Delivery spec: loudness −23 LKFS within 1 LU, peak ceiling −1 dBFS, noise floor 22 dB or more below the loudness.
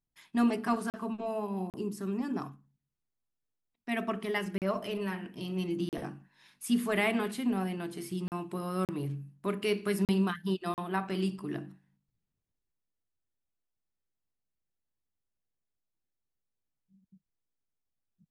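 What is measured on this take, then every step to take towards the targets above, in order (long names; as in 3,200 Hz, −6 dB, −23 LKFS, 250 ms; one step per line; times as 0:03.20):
number of dropouts 8; longest dropout 38 ms; integrated loudness −33.0 LKFS; sample peak −16.0 dBFS; target loudness −23.0 LKFS
→ repair the gap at 0:00.90/0:01.70/0:04.58/0:05.89/0:08.28/0:08.85/0:10.05/0:10.74, 38 ms
level +10 dB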